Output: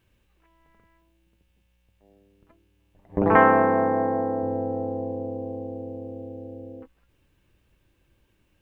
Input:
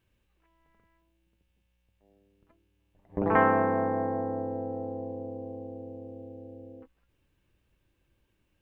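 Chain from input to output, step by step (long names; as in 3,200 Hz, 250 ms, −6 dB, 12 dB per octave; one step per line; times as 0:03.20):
0:03.36–0:04.43: low-shelf EQ 100 Hz −10 dB
level +6.5 dB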